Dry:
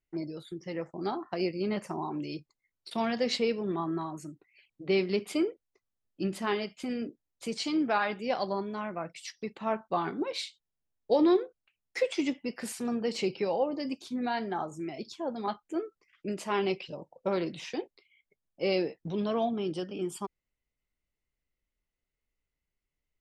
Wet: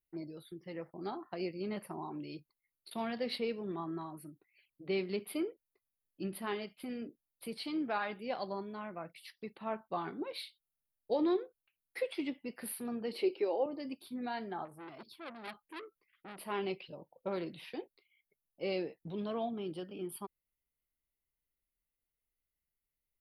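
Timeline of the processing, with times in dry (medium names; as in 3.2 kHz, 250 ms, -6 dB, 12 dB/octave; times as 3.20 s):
13.13–13.66 s: resonant low shelf 230 Hz -13 dB, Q 3
14.65–16.44 s: transformer saturation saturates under 2.9 kHz
whole clip: FFT filter 4.5 kHz 0 dB, 6.9 kHz -29 dB, 10 kHz +13 dB; trim -7.5 dB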